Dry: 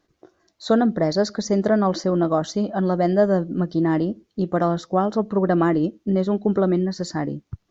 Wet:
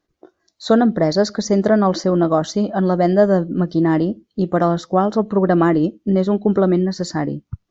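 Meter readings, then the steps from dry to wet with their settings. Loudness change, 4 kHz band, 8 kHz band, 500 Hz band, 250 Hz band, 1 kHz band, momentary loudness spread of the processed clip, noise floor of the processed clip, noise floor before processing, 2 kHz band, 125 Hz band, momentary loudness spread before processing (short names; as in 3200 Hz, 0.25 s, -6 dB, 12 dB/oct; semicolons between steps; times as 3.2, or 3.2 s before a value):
+4.0 dB, +4.0 dB, n/a, +4.0 dB, +4.0 dB, +4.0 dB, 8 LU, -73 dBFS, -72 dBFS, +4.0 dB, +4.0 dB, 8 LU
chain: spectral noise reduction 10 dB; gain +4 dB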